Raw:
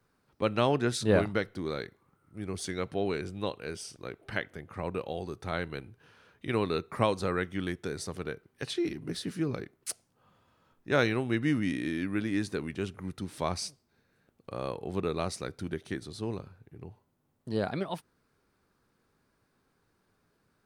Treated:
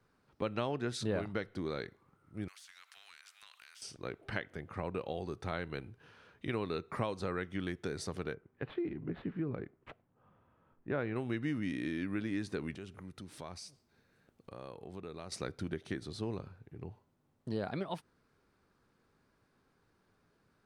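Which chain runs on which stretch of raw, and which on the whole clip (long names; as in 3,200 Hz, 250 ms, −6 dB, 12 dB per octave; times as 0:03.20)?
0:02.48–0:03.82: Butterworth high-pass 1,300 Hz + downward compressor 5 to 1, threshold −48 dBFS + every bin compressed towards the loudest bin 2 to 1
0:08.34–0:11.16: running median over 9 samples + high-frequency loss of the air 460 metres
0:12.75–0:15.32: high-shelf EQ 6,200 Hz +6 dB + downward compressor 2.5 to 1, threshold −48 dBFS
whole clip: high-shelf EQ 9,600 Hz −12 dB; downward compressor 3 to 1, threshold −34 dBFS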